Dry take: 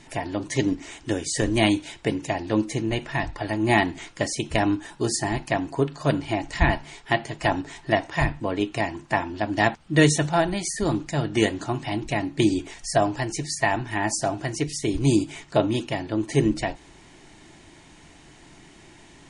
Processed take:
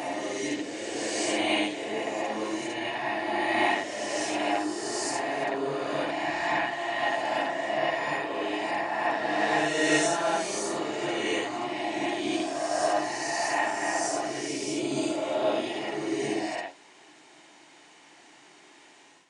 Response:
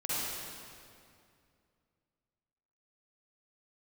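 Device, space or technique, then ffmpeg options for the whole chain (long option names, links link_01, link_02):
ghost voice: -filter_complex "[0:a]lowpass=9100,areverse[link_01];[1:a]atrim=start_sample=2205[link_02];[link_01][link_02]afir=irnorm=-1:irlink=0,areverse,highpass=450,volume=-7.5dB"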